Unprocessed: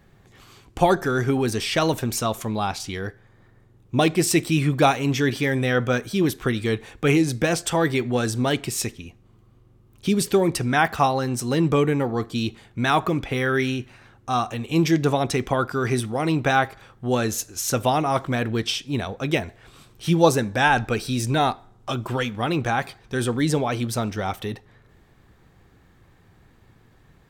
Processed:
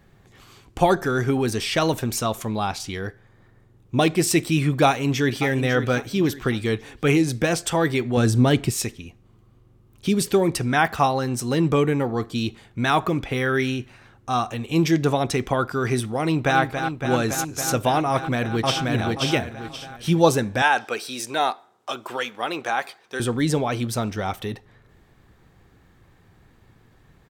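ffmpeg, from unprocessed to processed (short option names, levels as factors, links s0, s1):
-filter_complex "[0:a]asplit=2[s0][s1];[s1]afade=t=in:st=4.86:d=0.01,afade=t=out:st=5.44:d=0.01,aecho=0:1:550|1100|1650|2200:0.298538|0.104488|0.0365709|0.0127998[s2];[s0][s2]amix=inputs=2:normalize=0,asettb=1/sr,asplit=3[s3][s4][s5];[s3]atrim=end=6.014[s6];[s4]atrim=start=6.01:end=6.48,asetpts=PTS-STARTPTS,afade=t=in:d=0.004:c=qsin,afade=t=out:st=0.466:d=0.004:c=qsin,equalizer=f=10000:t=o:w=0.28:g=-10.5[s7];[s5]atrim=start=6.476[s8];[s6][s7]acrossfade=d=0.004:c1=hsin:c2=qsin[s9];[s9][s8]acrossfade=d=0.004:c1=qsin:c2=hsin,asettb=1/sr,asplit=3[s10][s11][s12];[s10]atrim=end=8.174[s13];[s11]atrim=start=8.17:end=8.72,asetpts=PTS-STARTPTS,afade=t=in:d=0.004:c=qsin,afade=t=out:st=0.546:d=0.004:c=qsin,lowshelf=f=320:g=9.5[s14];[s12]atrim=start=8.716[s15];[s13][s14]acrossfade=d=0.004:c1=hsin:c2=qsin[s16];[s16][s15]acrossfade=d=0.004:c1=qsin:c2=hsin,asplit=2[s17][s18];[s18]afade=t=in:st=16.2:d=0.01,afade=t=out:st=16.6:d=0.01,aecho=0:1:280|560|840|1120|1400|1680|1960|2240|2520|2800|3080|3360:0.421697|0.358442|0.304676|0.258974|0.220128|0.187109|0.159043|0.135186|0.114908|0.0976721|0.0830212|0.0705681[s19];[s17][s19]amix=inputs=2:normalize=0,asplit=2[s20][s21];[s21]afade=t=in:st=18.1:d=0.01,afade=t=out:st=18.85:d=0.01,aecho=0:1:530|1060|1590|2120:0.841395|0.252419|0.0757256|0.0227177[s22];[s20][s22]amix=inputs=2:normalize=0,asettb=1/sr,asplit=3[s23][s24][s25];[s23]atrim=end=20.624[s26];[s24]atrim=start=20.62:end=23.2,asetpts=PTS-STARTPTS,afade=t=in:d=0.004:c=qsin,afade=t=out:st=2.576:d=0.004:c=qsin,highpass=450[s27];[s25]atrim=start=23.196[s28];[s26][s27]acrossfade=d=0.004:c1=hsin:c2=qsin[s29];[s29][s28]acrossfade=d=0.004:c1=qsin:c2=hsin"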